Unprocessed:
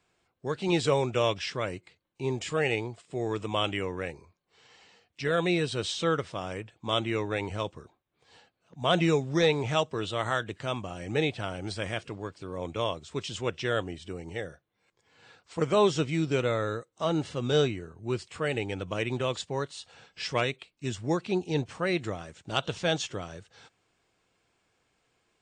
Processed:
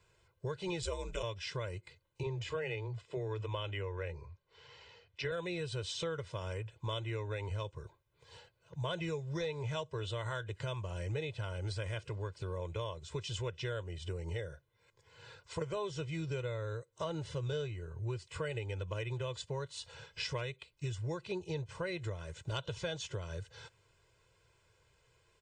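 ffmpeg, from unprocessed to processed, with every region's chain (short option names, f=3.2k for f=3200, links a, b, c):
-filter_complex "[0:a]asettb=1/sr,asplit=3[a][b][c];[a]atrim=end=0.824[d];[b]atrim=start=0.82:end=1.23,asetpts=PTS-STARTPTS,afade=t=in:d=0.004:c=qsin,afade=t=out:st=0.406:d=0.004:c=qsin,highshelf=f=4.5k:g=11.5,aeval=exprs='val(0)*sin(2*PI*75*n/s)':c=same[e];[c]atrim=start=1.226[f];[d][e]acrossfade=d=0.004:c1=hsin:c2=qsin[g];[g][f]acrossfade=d=0.004:c1=qsin:c2=hsin,asettb=1/sr,asplit=3[h][i][j];[h]atrim=end=2.234[k];[i]atrim=start=2.23:end=5.32,asetpts=PTS-STARTPTS,afade=t=in:d=0.004:c=qsin,afade=t=out:st=3.086:d=0.004:c=qsin,lowpass=4.6k,acrossover=split=200[l][m];[l]adelay=30[n];[n][m]amix=inputs=2:normalize=0,atrim=end_sample=136269[o];[j]atrim=start=5.316[p];[k][o]acrossfade=d=0.004:c1=hsin:c2=qsin[q];[q][p]acrossfade=d=0.004:c1=qsin:c2=hsin,lowshelf=f=160:t=q:w=1.5:g=6,aecho=1:1:2:0.83,acompressor=threshold=-35dB:ratio=6,volume=-1dB"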